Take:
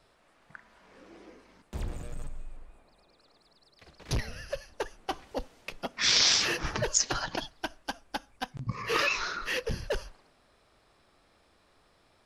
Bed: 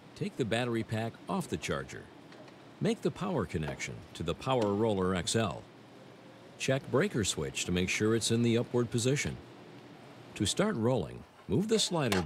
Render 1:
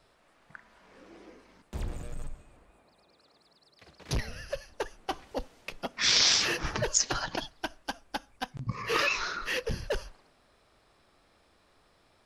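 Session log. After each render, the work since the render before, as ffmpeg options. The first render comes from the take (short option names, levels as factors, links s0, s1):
-filter_complex "[0:a]asettb=1/sr,asplit=3[s0][s1][s2];[s0]atrim=end=2.344[s3];[s1]atrim=start=2.34:end=4.15,asetpts=PTS-STARTPTS,afade=t=in:d=0.004:c=qsin,afade=t=out:st=1.806:d=0.004:c=qsin,highpass=71[s4];[s2]atrim=start=4.146[s5];[s3][s4]acrossfade=d=0.004:c1=hsin:c2=qsin[s6];[s6][s5]acrossfade=d=0.004:c1=qsin:c2=hsin"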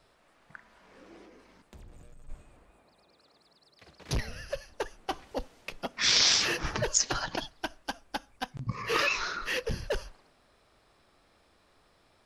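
-filter_complex "[0:a]asplit=3[s0][s1][s2];[s0]afade=t=out:st=1.25:d=0.02[s3];[s1]acompressor=threshold=0.00316:ratio=4:attack=3.2:release=140:knee=1:detection=peak,afade=t=in:st=1.25:d=0.02,afade=t=out:st=2.28:d=0.02[s4];[s2]afade=t=in:st=2.28:d=0.02[s5];[s3][s4][s5]amix=inputs=3:normalize=0"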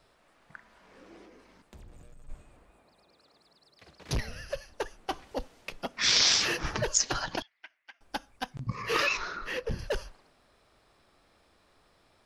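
-filter_complex "[0:a]asettb=1/sr,asplit=3[s0][s1][s2];[s0]atrim=end=7.424[s3];[s1]atrim=start=7.42:end=8.01,asetpts=PTS-STARTPTS,afade=t=in:d=0.004:c=qsin,afade=t=out:st=0.586:d=0.004:c=qsin,bandpass=f=2100:t=q:w=6.5[s4];[s2]atrim=start=8.006[s5];[s3][s4]acrossfade=d=0.004:c1=hsin:c2=qsin[s6];[s6][s5]acrossfade=d=0.004:c1=qsin:c2=hsin,asettb=1/sr,asplit=3[s7][s8][s9];[s7]atrim=end=9.174[s10];[s8]atrim=start=9.17:end=9.79,asetpts=PTS-STARTPTS,afade=t=in:d=0.004:c=qsin,afade=t=out:st=0.616:d=0.004:c=qsin,highshelf=f=2500:g=-9.5[s11];[s9]atrim=start=9.786[s12];[s10][s11]acrossfade=d=0.004:c1=hsin:c2=qsin[s13];[s13][s12]acrossfade=d=0.004:c1=qsin:c2=hsin"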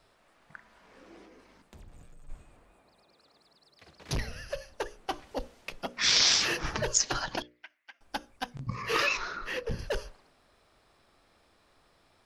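-af "bandreject=f=60:t=h:w=6,bandreject=f=120:t=h:w=6,bandreject=f=180:t=h:w=6,bandreject=f=240:t=h:w=6,bandreject=f=300:t=h:w=6,bandreject=f=360:t=h:w=6,bandreject=f=420:t=h:w=6,bandreject=f=480:t=h:w=6,bandreject=f=540:t=h:w=6,bandreject=f=600:t=h:w=6"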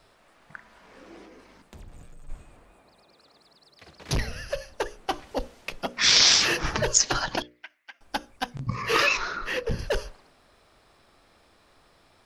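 -af "volume=1.88"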